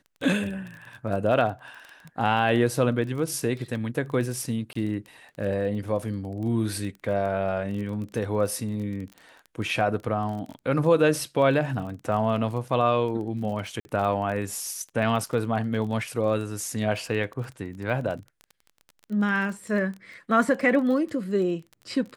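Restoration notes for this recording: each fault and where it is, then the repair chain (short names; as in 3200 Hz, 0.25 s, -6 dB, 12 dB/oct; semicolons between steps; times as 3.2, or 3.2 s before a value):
crackle 24/s -33 dBFS
4.73–4.75 gap 24 ms
13.8–13.85 gap 50 ms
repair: de-click; interpolate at 4.73, 24 ms; interpolate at 13.8, 50 ms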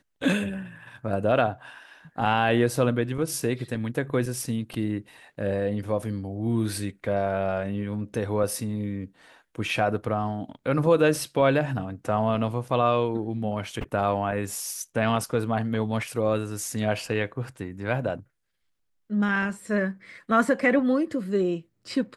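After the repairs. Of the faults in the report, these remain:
none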